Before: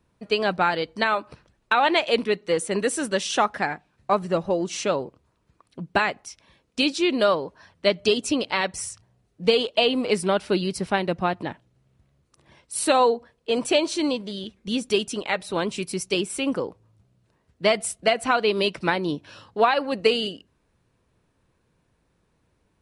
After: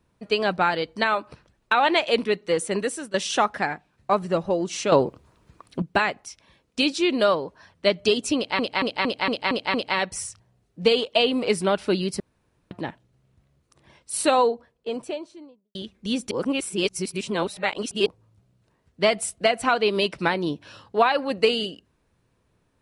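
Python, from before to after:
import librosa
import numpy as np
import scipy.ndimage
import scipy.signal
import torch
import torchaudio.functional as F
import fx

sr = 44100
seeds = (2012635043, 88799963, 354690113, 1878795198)

y = fx.studio_fade_out(x, sr, start_s=12.77, length_s=1.6)
y = fx.edit(y, sr, fx.fade_out_to(start_s=2.72, length_s=0.42, floor_db=-15.0),
    fx.clip_gain(start_s=4.92, length_s=0.9, db=9.5),
    fx.stutter(start_s=8.36, slice_s=0.23, count=7),
    fx.room_tone_fill(start_s=10.82, length_s=0.51),
    fx.reverse_span(start_s=14.93, length_s=1.75), tone=tone)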